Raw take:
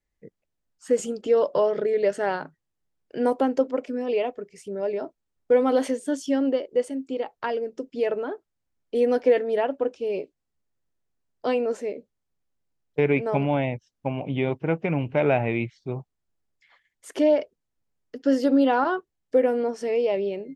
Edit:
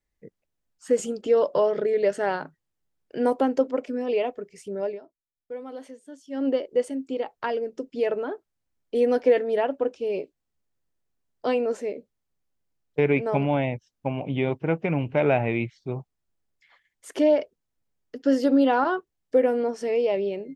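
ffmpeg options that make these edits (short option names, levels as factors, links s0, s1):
-filter_complex "[0:a]asplit=3[s0][s1][s2];[s0]atrim=end=5.01,asetpts=PTS-STARTPTS,afade=t=out:st=4.83:d=0.18:silence=0.141254[s3];[s1]atrim=start=5.01:end=6.3,asetpts=PTS-STARTPTS,volume=0.141[s4];[s2]atrim=start=6.3,asetpts=PTS-STARTPTS,afade=t=in:d=0.18:silence=0.141254[s5];[s3][s4][s5]concat=n=3:v=0:a=1"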